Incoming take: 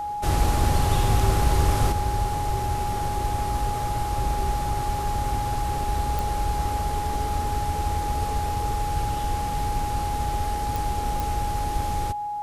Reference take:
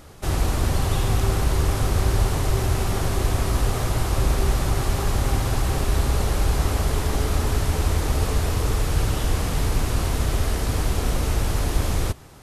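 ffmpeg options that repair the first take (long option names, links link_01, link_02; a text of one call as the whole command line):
ffmpeg -i in.wav -af "adeclick=threshold=4,bandreject=frequency=830:width=30,asetnsamples=nb_out_samples=441:pad=0,asendcmd='1.92 volume volume 6dB',volume=0dB" out.wav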